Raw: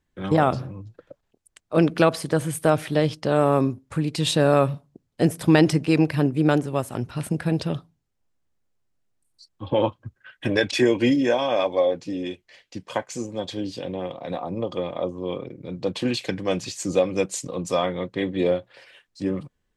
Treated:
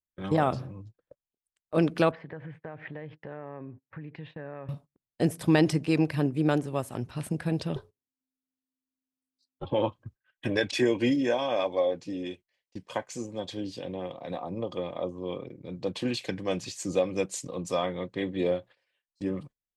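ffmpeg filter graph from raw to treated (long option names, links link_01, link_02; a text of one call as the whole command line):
ffmpeg -i in.wav -filter_complex "[0:a]asettb=1/sr,asplit=3[link_01][link_02][link_03];[link_01]atrim=end=2.114[link_04];[link_02]atrim=start=2.11:end=4.69,asetpts=PTS-STARTPTS,afade=type=in:duration=0.004:curve=qsin,afade=type=out:start_time=2.576:duration=0.004:curve=qsin,acompressor=threshold=-28dB:ratio=6:attack=3.2:release=140:knee=1:detection=peak,highpass=120,equalizer=frequency=220:width_type=q:width=4:gain=-8,equalizer=frequency=340:width_type=q:width=4:gain=-6,equalizer=frequency=630:width_type=q:width=4:gain=-4,equalizer=frequency=1200:width_type=q:width=4:gain=-6,equalizer=frequency=1800:width_type=q:width=4:gain=6,lowpass=frequency=2200:width=0.5412,lowpass=frequency=2200:width=1.3066[link_05];[link_03]atrim=start=4.686[link_06];[link_04][link_05]acrossfade=duration=0.004:curve1=hsin:curve2=qsin[link_07];[link_07][link_06]acrossfade=duration=0.004:curve1=qsin:curve2=hsin,asettb=1/sr,asplit=3[link_08][link_09][link_10];[link_08]atrim=end=7.764[link_11];[link_09]atrim=start=7.76:end=9.65,asetpts=PTS-STARTPTS,afade=type=in:duration=0.004:curve=qsin,afade=type=out:start_time=1.886:duration=0.004:curve=qsin,acontrast=66,aeval=exprs='val(0)*sin(2*PI*260*n/s)':channel_layout=same[link_12];[link_10]atrim=start=9.646[link_13];[link_11][link_12]acrossfade=duration=0.004:curve1=hsin:curve2=qsin[link_14];[link_14][link_13]acrossfade=duration=0.004:curve1=qsin:curve2=hsin,bandreject=frequency=1400:width=20,agate=range=-22dB:threshold=-41dB:ratio=16:detection=peak,volume=-5.5dB" out.wav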